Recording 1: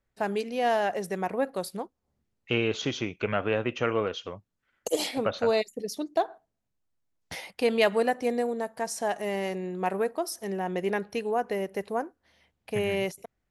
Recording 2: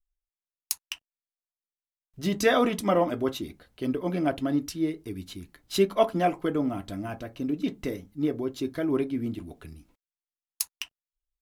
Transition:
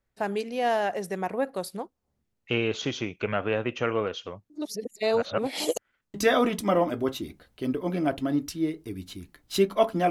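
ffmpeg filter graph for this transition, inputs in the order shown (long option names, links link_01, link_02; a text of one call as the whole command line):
ffmpeg -i cue0.wav -i cue1.wav -filter_complex "[0:a]apad=whole_dur=10.1,atrim=end=10.1,asplit=2[link_01][link_02];[link_01]atrim=end=4.502[link_03];[link_02]atrim=start=4.498:end=6.142,asetpts=PTS-STARTPTS,areverse[link_04];[1:a]atrim=start=2.338:end=6.3[link_05];[link_03][link_04]acrossfade=duration=0.004:curve1=hsin:curve2=hsin[link_06];[link_06][link_05]acrossfade=duration=0.004:curve1=hsin:curve2=hsin" out.wav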